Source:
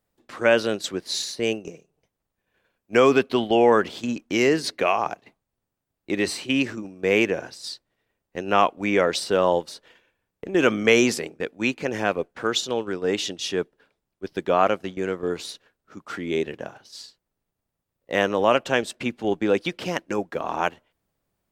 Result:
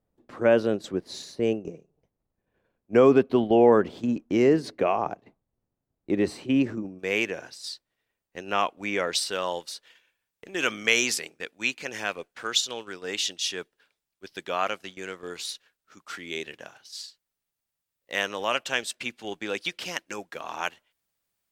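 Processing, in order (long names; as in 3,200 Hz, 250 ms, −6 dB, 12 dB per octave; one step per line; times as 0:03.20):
tilt shelving filter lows +7.5 dB, about 1,200 Hz, from 0:06.98 lows −4 dB, from 0:09.14 lows −8.5 dB
level −5.5 dB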